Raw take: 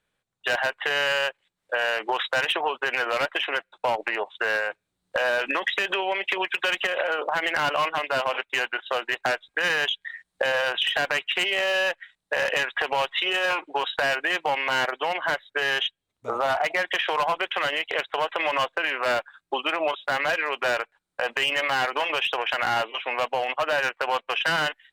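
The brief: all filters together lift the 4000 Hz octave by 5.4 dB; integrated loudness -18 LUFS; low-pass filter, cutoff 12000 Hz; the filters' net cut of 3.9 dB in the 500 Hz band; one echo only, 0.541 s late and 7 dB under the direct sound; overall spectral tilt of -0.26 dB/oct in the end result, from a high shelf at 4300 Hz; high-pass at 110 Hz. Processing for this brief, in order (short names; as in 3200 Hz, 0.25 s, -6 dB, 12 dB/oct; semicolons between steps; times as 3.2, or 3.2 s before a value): HPF 110 Hz; LPF 12000 Hz; bell 500 Hz -5 dB; bell 4000 Hz +4.5 dB; high shelf 4300 Hz +7.5 dB; echo 0.541 s -7 dB; gain +4.5 dB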